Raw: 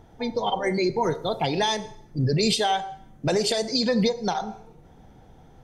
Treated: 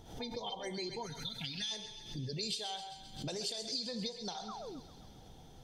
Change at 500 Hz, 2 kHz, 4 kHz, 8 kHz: −19.0, −17.5, −10.0, −11.0 decibels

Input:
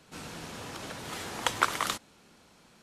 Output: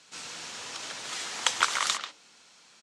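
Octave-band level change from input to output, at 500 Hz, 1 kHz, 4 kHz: −5.0, 0.0, +6.0 decibels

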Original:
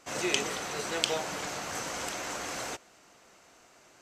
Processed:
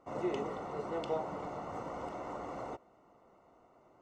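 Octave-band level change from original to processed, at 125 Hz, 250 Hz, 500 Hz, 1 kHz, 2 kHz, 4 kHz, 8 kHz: −1.5, −1.5, −1.5, −3.0, −16.5, −22.5, −28.5 decibels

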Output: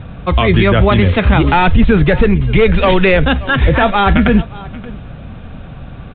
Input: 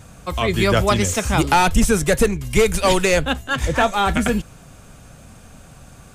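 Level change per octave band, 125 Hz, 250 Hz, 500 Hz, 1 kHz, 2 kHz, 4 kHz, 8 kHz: +10.5 dB, +8.5 dB, +5.5 dB, +4.5 dB, +6.0 dB, +3.0 dB, below −40 dB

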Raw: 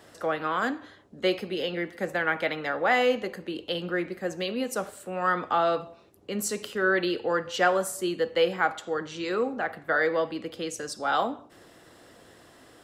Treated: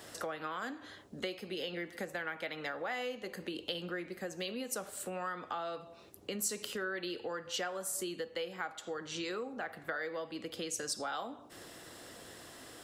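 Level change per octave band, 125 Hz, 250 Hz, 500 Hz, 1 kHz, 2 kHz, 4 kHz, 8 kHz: −10.0, −11.0, −13.0, −13.5, −12.0, −6.5, −2.0 decibels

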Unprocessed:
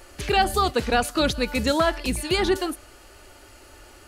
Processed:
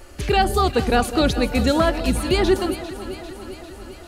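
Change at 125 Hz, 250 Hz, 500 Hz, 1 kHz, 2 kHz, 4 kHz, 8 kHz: +7.5, +5.5, +4.0, +2.0, +0.5, +0.5, +0.5 decibels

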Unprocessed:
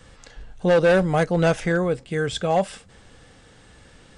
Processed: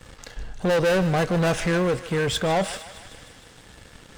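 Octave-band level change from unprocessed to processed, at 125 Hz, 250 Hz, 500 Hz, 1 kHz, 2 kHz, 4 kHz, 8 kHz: −0.5, −1.0, −3.0, −1.5, −1.0, +3.5, +4.5 decibels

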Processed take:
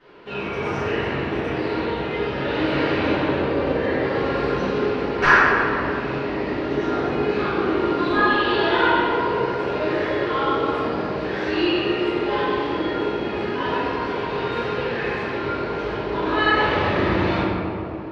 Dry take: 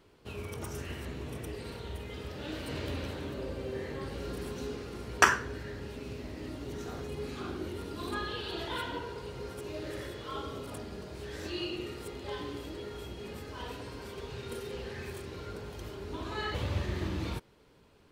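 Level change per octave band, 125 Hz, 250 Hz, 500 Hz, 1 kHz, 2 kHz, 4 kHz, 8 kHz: +9.5 dB, +17.0 dB, +17.5 dB, +16.5 dB, +15.0 dB, +12.0 dB, can't be measured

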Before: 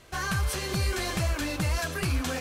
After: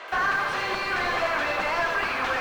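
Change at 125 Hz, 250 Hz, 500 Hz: −16.5, −5.5, +5.0 decibels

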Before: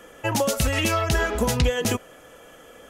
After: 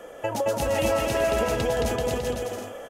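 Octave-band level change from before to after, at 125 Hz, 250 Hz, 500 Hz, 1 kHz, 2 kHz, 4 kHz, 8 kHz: −6.0, −3.5, +3.0, −0.5, −5.0, −5.5, −6.0 decibels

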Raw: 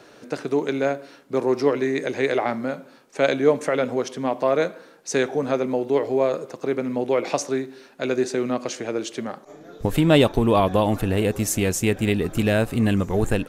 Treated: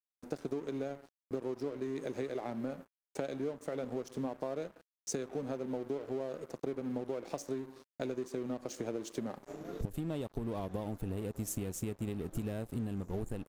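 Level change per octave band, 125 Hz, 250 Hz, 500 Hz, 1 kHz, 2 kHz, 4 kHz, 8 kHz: −15.0, −15.0, −17.0, −19.5, −23.5, −21.5, −14.0 decibels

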